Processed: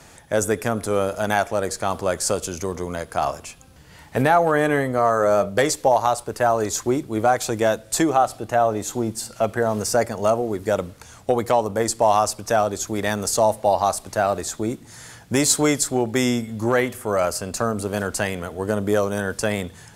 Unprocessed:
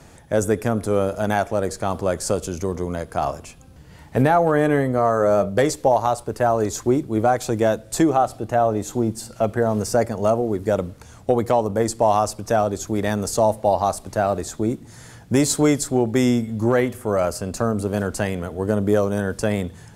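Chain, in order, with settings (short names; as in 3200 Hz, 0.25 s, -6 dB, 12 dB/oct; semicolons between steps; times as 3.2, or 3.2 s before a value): tilt shelf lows -4.5 dB, about 660 Hz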